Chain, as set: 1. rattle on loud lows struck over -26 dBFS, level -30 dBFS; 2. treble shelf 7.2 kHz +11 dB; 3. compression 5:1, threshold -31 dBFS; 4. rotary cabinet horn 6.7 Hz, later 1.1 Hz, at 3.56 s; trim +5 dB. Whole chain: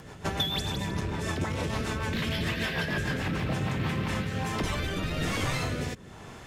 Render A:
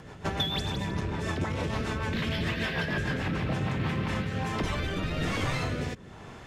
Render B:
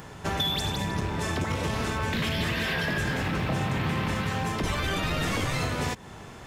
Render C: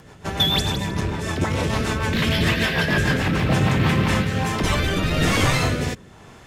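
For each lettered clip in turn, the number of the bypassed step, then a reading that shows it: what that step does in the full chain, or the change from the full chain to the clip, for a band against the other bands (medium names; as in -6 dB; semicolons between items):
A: 2, 8 kHz band -5.0 dB; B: 4, 1 kHz band +2.0 dB; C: 3, mean gain reduction 8.0 dB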